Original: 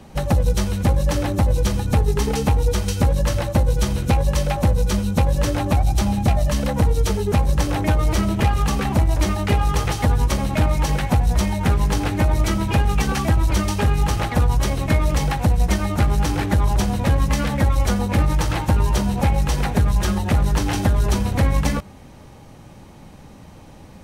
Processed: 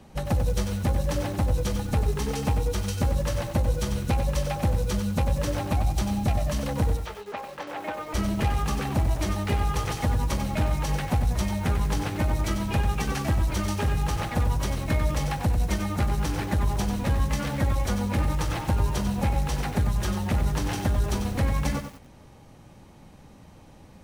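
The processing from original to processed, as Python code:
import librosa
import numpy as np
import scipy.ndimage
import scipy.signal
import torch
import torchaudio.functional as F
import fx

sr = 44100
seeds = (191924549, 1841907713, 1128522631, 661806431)

y = fx.bandpass_edges(x, sr, low_hz=fx.line((6.96, 680.0), (8.13, 390.0)), high_hz=2700.0, at=(6.96, 8.13), fade=0.02)
y = fx.echo_crushed(y, sr, ms=94, feedback_pct=35, bits=6, wet_db=-7.5)
y = F.gain(torch.from_numpy(y), -7.0).numpy()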